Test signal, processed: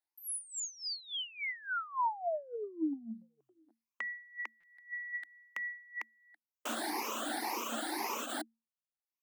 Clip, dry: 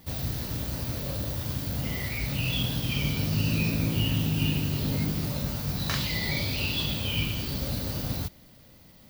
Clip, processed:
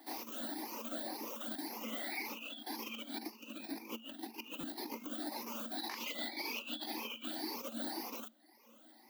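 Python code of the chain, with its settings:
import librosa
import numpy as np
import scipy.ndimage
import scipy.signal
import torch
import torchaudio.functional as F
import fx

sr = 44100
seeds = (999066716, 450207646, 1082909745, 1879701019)

y = fx.spec_ripple(x, sr, per_octave=0.8, drift_hz=1.9, depth_db=11)
y = fx.dereverb_blind(y, sr, rt60_s=0.78)
y = fx.over_compress(y, sr, threshold_db=-31.0, ratio=-0.5)
y = scipy.signal.sosfilt(scipy.signal.cheby1(6, 9, 220.0, 'highpass', fs=sr, output='sos'), y)
y = fx.buffer_glitch(y, sr, at_s=(4.6,), block=256, repeats=5)
y = y * 10.0 ** (-1.0 / 20.0)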